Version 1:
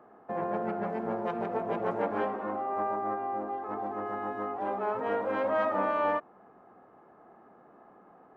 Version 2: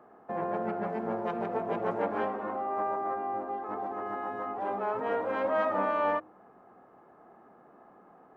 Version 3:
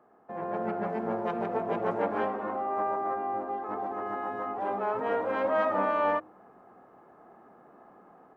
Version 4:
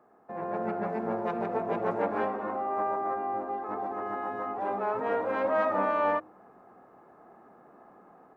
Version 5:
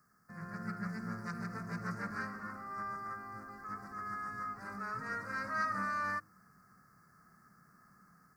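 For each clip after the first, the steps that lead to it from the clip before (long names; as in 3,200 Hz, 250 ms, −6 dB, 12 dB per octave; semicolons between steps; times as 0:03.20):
hum removal 104.4 Hz, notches 5
automatic gain control gain up to 7.5 dB; level −6 dB
notch filter 3,100 Hz, Q 12
drawn EQ curve 170 Hz 0 dB, 320 Hz −22 dB, 540 Hz −25 dB, 840 Hz −27 dB, 1,300 Hz −3 dB, 1,900 Hz −3 dB, 3,300 Hz −27 dB, 4,700 Hz +13 dB, 6,900 Hz +10 dB; level +2.5 dB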